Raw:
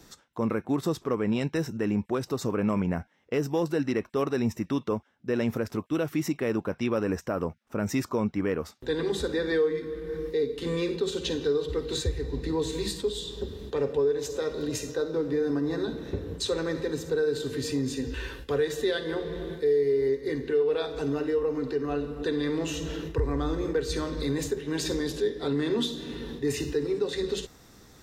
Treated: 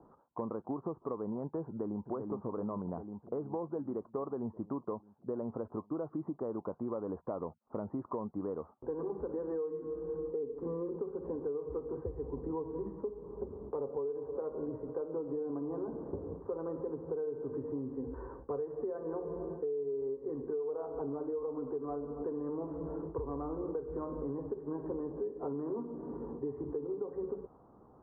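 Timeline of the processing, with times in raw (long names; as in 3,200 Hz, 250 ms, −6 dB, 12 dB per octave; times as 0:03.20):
0:01.66–0:02.11: delay throw 390 ms, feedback 70%, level −5.5 dB
whole clip: Butterworth low-pass 1,100 Hz 48 dB per octave; spectral tilt +3 dB per octave; downward compressor, threshold −35 dBFS; level +1 dB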